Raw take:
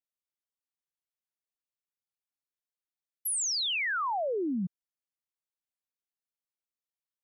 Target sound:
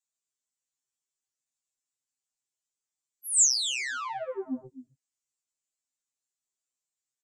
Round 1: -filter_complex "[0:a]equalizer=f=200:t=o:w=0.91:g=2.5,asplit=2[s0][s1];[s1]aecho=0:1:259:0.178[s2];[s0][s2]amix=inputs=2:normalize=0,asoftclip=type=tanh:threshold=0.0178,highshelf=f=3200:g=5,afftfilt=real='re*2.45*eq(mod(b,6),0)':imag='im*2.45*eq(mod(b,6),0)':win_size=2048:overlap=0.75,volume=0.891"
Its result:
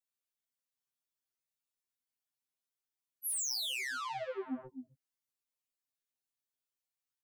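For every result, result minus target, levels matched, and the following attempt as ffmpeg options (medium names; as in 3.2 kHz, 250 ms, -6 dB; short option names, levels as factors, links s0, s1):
saturation: distortion +10 dB; 8 kHz band -2.5 dB
-filter_complex "[0:a]equalizer=f=200:t=o:w=0.91:g=2.5,asplit=2[s0][s1];[s1]aecho=0:1:259:0.178[s2];[s0][s2]amix=inputs=2:normalize=0,asoftclip=type=tanh:threshold=0.0473,highshelf=f=3200:g=5,afftfilt=real='re*2.45*eq(mod(b,6),0)':imag='im*2.45*eq(mod(b,6),0)':win_size=2048:overlap=0.75,volume=0.891"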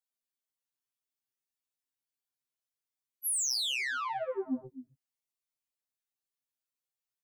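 8 kHz band -2.5 dB
-filter_complex "[0:a]equalizer=f=200:t=o:w=0.91:g=2.5,asplit=2[s0][s1];[s1]aecho=0:1:259:0.178[s2];[s0][s2]amix=inputs=2:normalize=0,asoftclip=type=tanh:threshold=0.0473,lowpass=f=7400:t=q:w=4.6,highshelf=f=3200:g=5,afftfilt=real='re*2.45*eq(mod(b,6),0)':imag='im*2.45*eq(mod(b,6),0)':win_size=2048:overlap=0.75,volume=0.891"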